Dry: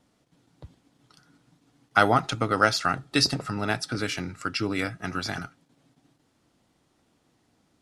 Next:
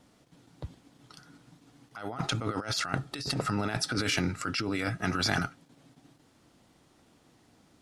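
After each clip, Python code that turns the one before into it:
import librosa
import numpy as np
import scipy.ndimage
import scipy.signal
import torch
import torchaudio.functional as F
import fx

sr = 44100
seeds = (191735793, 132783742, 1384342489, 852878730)

y = fx.over_compress(x, sr, threshold_db=-32.0, ratio=-1.0)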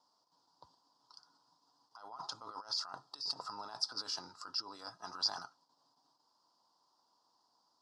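y = fx.double_bandpass(x, sr, hz=2200.0, octaves=2.3)
y = y * librosa.db_to_amplitude(1.0)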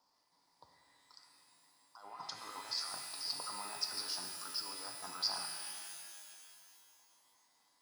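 y = fx.dmg_crackle(x, sr, seeds[0], per_s=440.0, level_db=-69.0)
y = fx.rev_shimmer(y, sr, seeds[1], rt60_s=2.3, semitones=12, shimmer_db=-2, drr_db=4.0)
y = y * librosa.db_to_amplitude(-2.0)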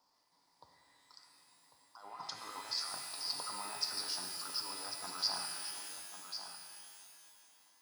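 y = x + 10.0 ** (-9.5 / 20.0) * np.pad(x, (int(1097 * sr / 1000.0), 0))[:len(x)]
y = y * librosa.db_to_amplitude(1.0)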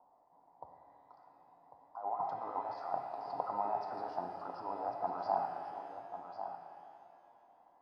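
y = fx.lowpass_res(x, sr, hz=740.0, q=4.9)
y = y * librosa.db_to_amplitude(5.0)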